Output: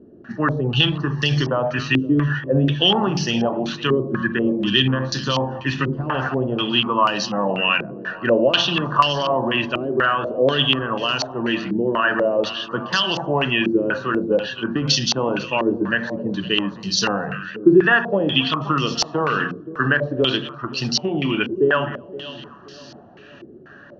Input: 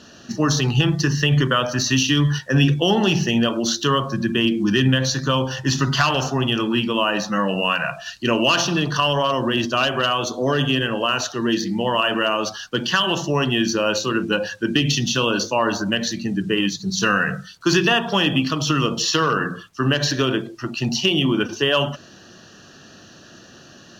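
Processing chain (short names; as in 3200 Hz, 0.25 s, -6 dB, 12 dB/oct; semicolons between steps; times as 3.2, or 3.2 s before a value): split-band echo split 940 Hz, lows 0.524 s, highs 0.254 s, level -14.5 dB; stepped low-pass 4.1 Hz 380–4900 Hz; gain -3 dB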